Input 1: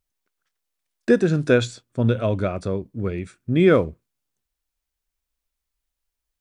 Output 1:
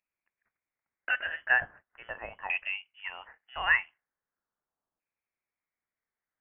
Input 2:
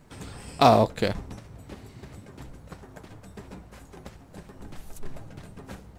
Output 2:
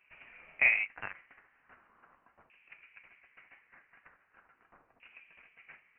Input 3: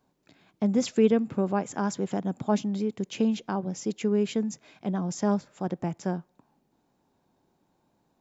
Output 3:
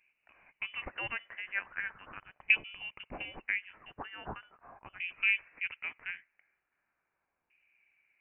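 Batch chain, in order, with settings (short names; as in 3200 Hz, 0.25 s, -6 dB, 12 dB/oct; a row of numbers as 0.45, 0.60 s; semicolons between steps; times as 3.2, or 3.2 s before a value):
LFO high-pass saw up 0.4 Hz 690–2400 Hz; inverted band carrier 3200 Hz; normalise peaks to -12 dBFS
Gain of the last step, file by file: -4.0, -10.0, -1.5 dB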